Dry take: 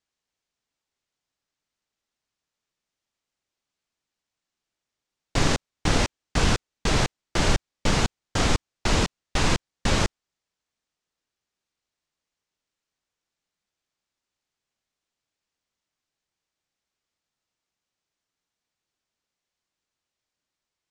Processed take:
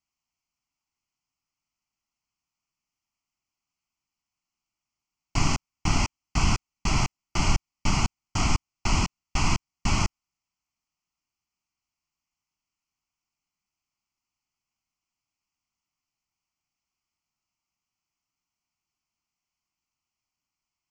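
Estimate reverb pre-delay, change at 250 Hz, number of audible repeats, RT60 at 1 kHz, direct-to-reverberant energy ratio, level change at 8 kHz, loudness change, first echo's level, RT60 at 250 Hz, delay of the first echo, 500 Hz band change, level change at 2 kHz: no reverb audible, −3.0 dB, no echo audible, no reverb audible, no reverb audible, −1.0 dB, −2.5 dB, no echo audible, no reverb audible, no echo audible, −10.5 dB, −4.0 dB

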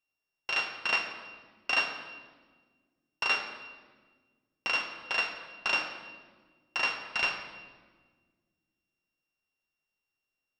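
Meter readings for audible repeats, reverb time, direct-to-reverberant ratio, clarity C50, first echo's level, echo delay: no echo audible, 1.5 s, 3.5 dB, 7.0 dB, no echo audible, no echo audible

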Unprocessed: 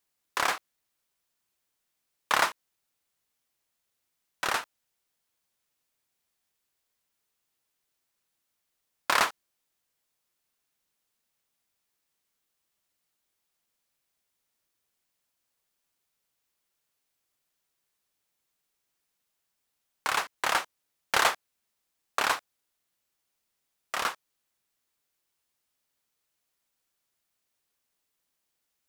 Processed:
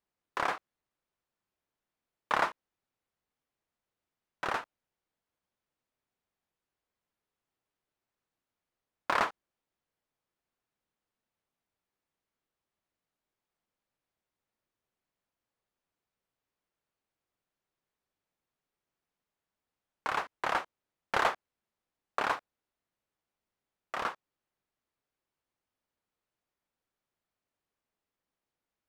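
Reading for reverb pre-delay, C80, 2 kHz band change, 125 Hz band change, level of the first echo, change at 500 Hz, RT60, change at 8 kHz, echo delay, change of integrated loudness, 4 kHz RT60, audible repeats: no reverb audible, no reverb audible, −5.5 dB, 0.0 dB, no echo audible, −1.0 dB, no reverb audible, −16.0 dB, no echo audible, −5.0 dB, no reverb audible, no echo audible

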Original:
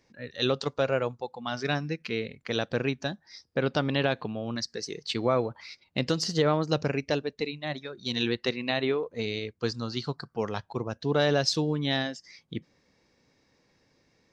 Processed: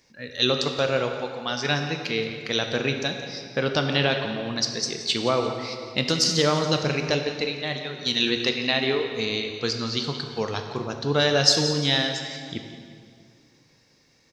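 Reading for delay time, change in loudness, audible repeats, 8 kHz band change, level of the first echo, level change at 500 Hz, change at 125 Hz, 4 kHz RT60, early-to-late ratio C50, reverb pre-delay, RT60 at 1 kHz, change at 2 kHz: 174 ms, +5.0 dB, 2, +11.0 dB, −13.5 dB, +3.0 dB, +3.0 dB, 1.7 s, 5.5 dB, 10 ms, 2.1 s, +6.5 dB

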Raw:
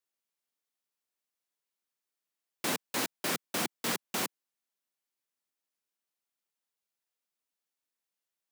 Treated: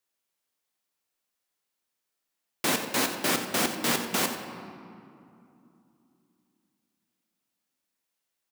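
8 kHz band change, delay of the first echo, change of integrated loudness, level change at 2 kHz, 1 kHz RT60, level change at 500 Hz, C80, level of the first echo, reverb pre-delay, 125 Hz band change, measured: +6.0 dB, 91 ms, +6.5 dB, +6.5 dB, 2.7 s, +7.0 dB, 7.0 dB, −12.5 dB, 3 ms, +7.0 dB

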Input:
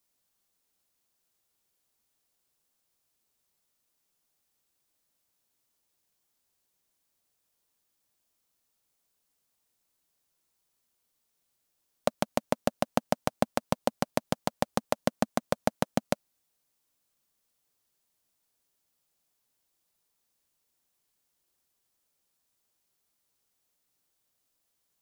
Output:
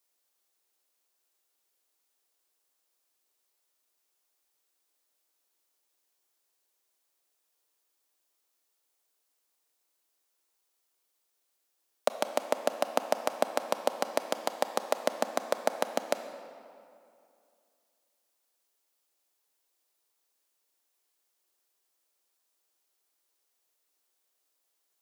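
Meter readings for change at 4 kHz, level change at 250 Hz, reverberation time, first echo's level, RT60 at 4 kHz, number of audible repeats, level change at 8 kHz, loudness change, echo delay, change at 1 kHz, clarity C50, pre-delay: +0.5 dB, −9.0 dB, 2.5 s, no echo audible, 1.6 s, no echo audible, +0.5 dB, −0.5 dB, no echo audible, +0.5 dB, 9.0 dB, 25 ms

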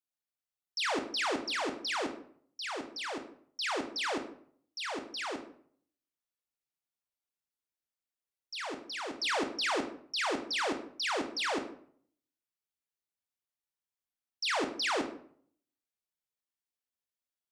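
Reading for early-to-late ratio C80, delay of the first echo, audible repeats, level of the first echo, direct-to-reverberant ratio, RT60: 13.5 dB, no echo audible, no echo audible, no echo audible, 5.5 dB, 0.55 s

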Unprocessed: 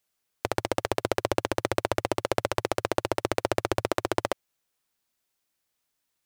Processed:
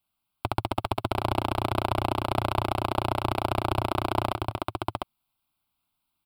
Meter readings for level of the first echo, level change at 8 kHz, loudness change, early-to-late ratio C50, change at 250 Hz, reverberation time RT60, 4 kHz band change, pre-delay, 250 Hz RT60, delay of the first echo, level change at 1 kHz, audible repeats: −16.5 dB, −8.0 dB, +0.5 dB, no reverb audible, +1.5 dB, no reverb audible, +1.0 dB, no reverb audible, no reverb audible, 262 ms, +4.5 dB, 2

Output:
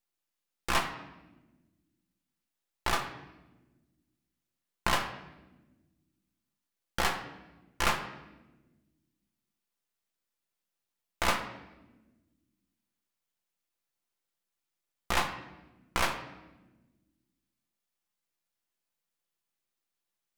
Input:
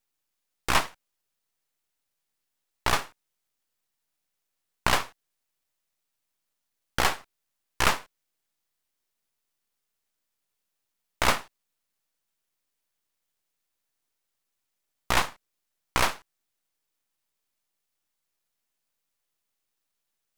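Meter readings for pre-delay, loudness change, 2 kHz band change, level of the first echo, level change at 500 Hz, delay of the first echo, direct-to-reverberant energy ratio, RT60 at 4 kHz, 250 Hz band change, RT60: 6 ms, −5.5 dB, −4.5 dB, no echo audible, −4.0 dB, no echo audible, 3.0 dB, 0.85 s, −3.0 dB, 1.1 s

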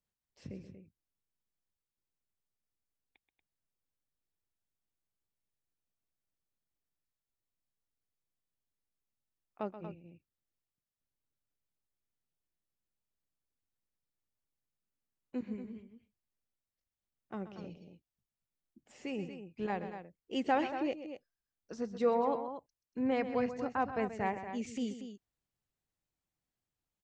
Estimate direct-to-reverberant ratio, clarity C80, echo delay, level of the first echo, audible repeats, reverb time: no reverb audible, no reverb audible, 130 ms, −12.0 dB, 2, no reverb audible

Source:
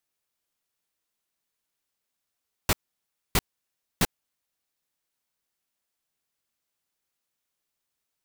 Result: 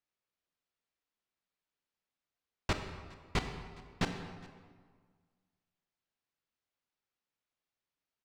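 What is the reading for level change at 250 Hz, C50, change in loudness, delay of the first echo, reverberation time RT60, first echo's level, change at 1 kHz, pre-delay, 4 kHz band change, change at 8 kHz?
−4.5 dB, 7.0 dB, −9.5 dB, 413 ms, 1.7 s, −24.0 dB, −5.0 dB, 24 ms, −8.5 dB, −16.5 dB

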